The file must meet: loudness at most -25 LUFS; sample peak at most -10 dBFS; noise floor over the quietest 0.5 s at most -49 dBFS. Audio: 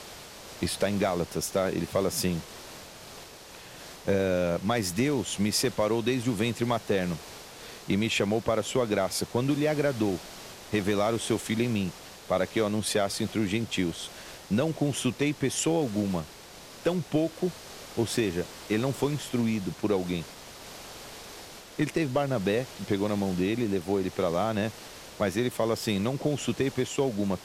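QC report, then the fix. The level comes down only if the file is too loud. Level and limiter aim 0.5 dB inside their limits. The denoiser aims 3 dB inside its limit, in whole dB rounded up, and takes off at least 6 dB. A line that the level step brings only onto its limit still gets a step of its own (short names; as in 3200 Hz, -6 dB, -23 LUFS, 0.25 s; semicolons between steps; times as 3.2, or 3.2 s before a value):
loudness -28.5 LUFS: OK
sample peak -15.0 dBFS: OK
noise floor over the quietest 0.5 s -47 dBFS: fail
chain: denoiser 6 dB, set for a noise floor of -47 dBFS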